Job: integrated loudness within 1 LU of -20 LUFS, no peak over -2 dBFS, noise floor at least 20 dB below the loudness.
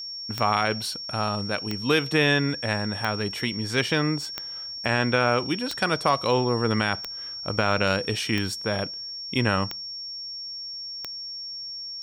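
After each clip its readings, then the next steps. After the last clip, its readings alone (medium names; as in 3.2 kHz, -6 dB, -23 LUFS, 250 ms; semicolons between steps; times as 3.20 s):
clicks found 9; steady tone 5.5 kHz; tone level -33 dBFS; loudness -25.5 LUFS; peak level -9.0 dBFS; loudness target -20.0 LUFS
-> de-click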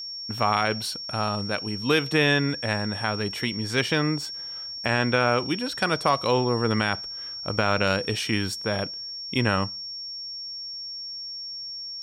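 clicks found 0; steady tone 5.5 kHz; tone level -33 dBFS
-> band-stop 5.5 kHz, Q 30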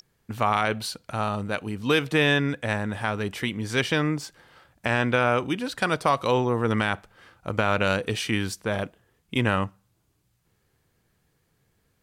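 steady tone not found; loudness -25.5 LUFS; peak level -9.5 dBFS; loudness target -20.0 LUFS
-> trim +5.5 dB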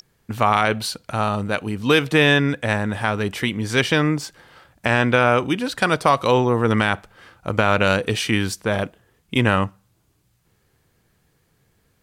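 loudness -20.0 LUFS; peak level -4.0 dBFS; noise floor -65 dBFS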